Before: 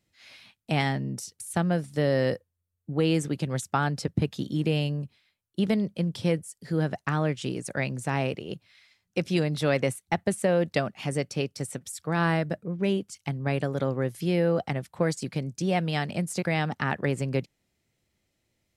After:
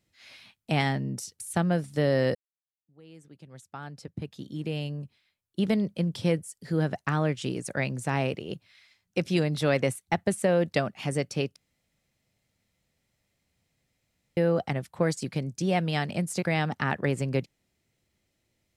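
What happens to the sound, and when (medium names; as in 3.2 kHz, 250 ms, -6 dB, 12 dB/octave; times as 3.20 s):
2.35–5.79 s: fade in quadratic
11.56–14.37 s: room tone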